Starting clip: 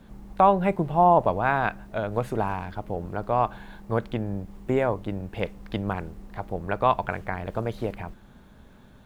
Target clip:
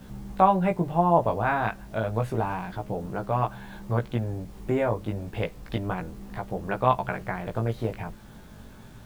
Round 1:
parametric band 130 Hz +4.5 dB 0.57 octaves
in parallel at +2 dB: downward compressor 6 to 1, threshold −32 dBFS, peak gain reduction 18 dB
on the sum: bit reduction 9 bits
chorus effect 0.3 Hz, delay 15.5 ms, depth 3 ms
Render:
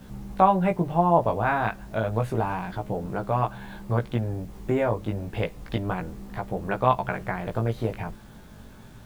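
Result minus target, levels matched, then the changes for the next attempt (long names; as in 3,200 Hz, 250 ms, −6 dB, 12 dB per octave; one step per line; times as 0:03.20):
downward compressor: peak gain reduction −5.5 dB
change: downward compressor 6 to 1, threshold −38.5 dBFS, peak gain reduction 23.5 dB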